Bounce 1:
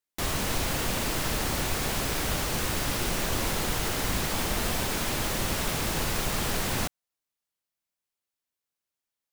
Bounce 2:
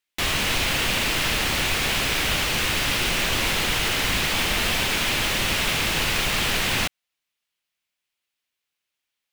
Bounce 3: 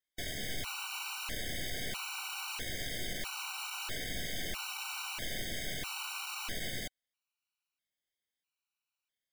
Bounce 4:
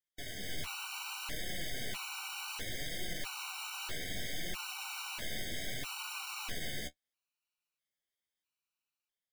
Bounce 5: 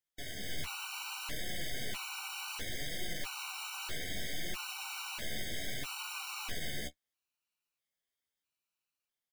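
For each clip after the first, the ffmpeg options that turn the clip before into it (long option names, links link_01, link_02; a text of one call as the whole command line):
ffmpeg -i in.wav -af "equalizer=frequency=2700:width_type=o:width=1.6:gain=11.5,volume=1.5dB" out.wav
ffmpeg -i in.wav -af "aeval=exprs='(tanh(50.1*val(0)+0.8)-tanh(0.8))/50.1':channel_layout=same,afftfilt=real='re*gt(sin(2*PI*0.77*pts/sr)*(1-2*mod(floor(b*sr/1024/760),2)),0)':imag='im*gt(sin(2*PI*0.77*pts/sr)*(1-2*mod(floor(b*sr/1024/760),2)),0)':win_size=1024:overlap=0.75,volume=-1.5dB" out.wav
ffmpeg -i in.wav -af "dynaudnorm=framelen=120:gausssize=7:maxgain=4dB,flanger=delay=5.5:depth=8.4:regen=34:speed=0.66:shape=sinusoidal,volume=-2dB" out.wav
ffmpeg -i in.wav -filter_complex "[0:a]asplit=2[link_01][link_02];[link_02]adelay=14,volume=-12dB[link_03];[link_01][link_03]amix=inputs=2:normalize=0" out.wav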